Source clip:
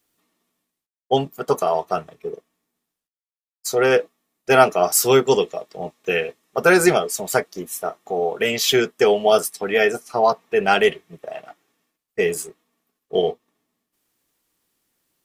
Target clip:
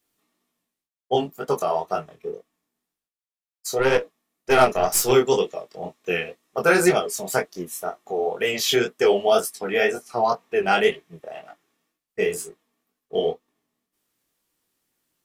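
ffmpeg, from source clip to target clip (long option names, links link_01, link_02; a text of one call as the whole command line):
ffmpeg -i in.wav -filter_complex "[0:a]flanger=delay=19.5:depth=6.6:speed=2,asettb=1/sr,asplit=3[link_01][link_02][link_03];[link_01]atrim=end=3.794[link_04];[link_02]atrim=start=3.79:end=5.12,asetpts=PTS-STARTPTS,afade=type=in:duration=0.004:curve=qsin,afade=type=out:start_time=1.326:duration=0.004:curve=qsin,aeval=exprs='0.531*(cos(1*acos(clip(val(0)/0.531,-1,1)))-cos(1*PI/2))+0.0376*(cos(6*acos(clip(val(0)/0.531,-1,1)))-cos(6*PI/2))':channel_layout=same[link_05];[link_03]atrim=start=5.116[link_06];[link_04][link_05]acrossfade=duration=0.004:curve1=hsin:curve2=qsin[link_07];[link_07][link_06]acrossfade=duration=0.004:curve1=qsin:curve2=hsin" out.wav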